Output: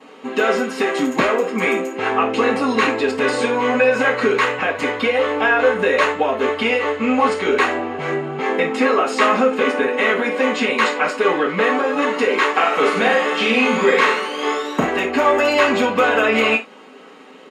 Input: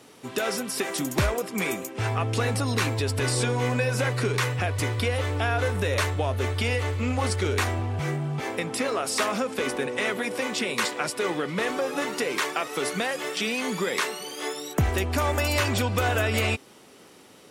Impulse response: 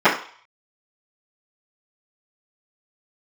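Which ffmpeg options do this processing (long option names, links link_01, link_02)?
-filter_complex "[0:a]asplit=3[link_01][link_02][link_03];[link_01]afade=type=out:start_time=12.54:duration=0.02[link_04];[link_02]aecho=1:1:40|92|159.6|247.5|361.7:0.631|0.398|0.251|0.158|0.1,afade=type=in:start_time=12.54:duration=0.02,afade=type=out:start_time=14.84:duration=0.02[link_05];[link_03]afade=type=in:start_time=14.84:duration=0.02[link_06];[link_04][link_05][link_06]amix=inputs=3:normalize=0[link_07];[1:a]atrim=start_sample=2205,afade=type=out:start_time=0.19:duration=0.01,atrim=end_sample=8820,asetrate=57330,aresample=44100[link_08];[link_07][link_08]afir=irnorm=-1:irlink=0,volume=-13dB"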